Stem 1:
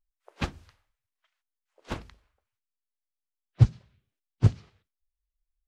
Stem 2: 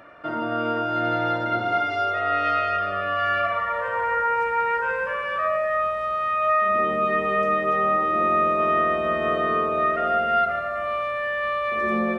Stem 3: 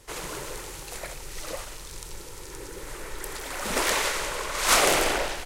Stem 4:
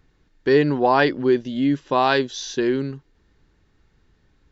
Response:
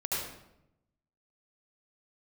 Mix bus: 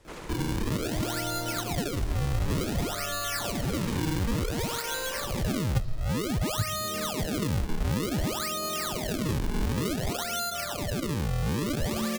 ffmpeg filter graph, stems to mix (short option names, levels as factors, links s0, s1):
-filter_complex "[0:a]equalizer=f=4500:w=1.5:g=14,adelay=2150,volume=0.794,asplit=2[s0][s1];[s1]volume=0.0708[s2];[1:a]adelay=50,volume=1.06[s3];[2:a]asoftclip=type=hard:threshold=0.112,volume=0.708,lowpass=f=2600:p=1,alimiter=level_in=2.37:limit=0.0631:level=0:latency=1:release=418,volume=0.422,volume=1[s4];[s0][s3]amix=inputs=2:normalize=0,acrusher=samples=39:mix=1:aa=0.000001:lfo=1:lforange=62.4:lforate=0.55,acompressor=threshold=0.0708:ratio=6,volume=1[s5];[4:a]atrim=start_sample=2205[s6];[s2][s6]afir=irnorm=-1:irlink=0[s7];[s4][s5][s7]amix=inputs=3:normalize=0,acrossover=split=280|3000[s8][s9][s10];[s9]acompressor=threshold=0.02:ratio=4[s11];[s8][s11][s10]amix=inputs=3:normalize=0"